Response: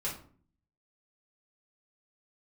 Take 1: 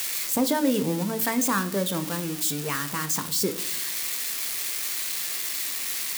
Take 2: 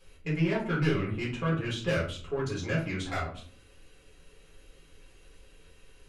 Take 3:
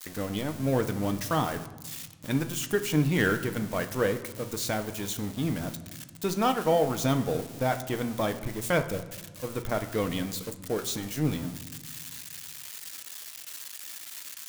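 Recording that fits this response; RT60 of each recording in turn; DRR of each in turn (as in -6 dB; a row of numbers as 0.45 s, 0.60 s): 2; 0.75 s, 0.50 s, 1.4 s; 8.5 dB, -6.5 dB, 7.5 dB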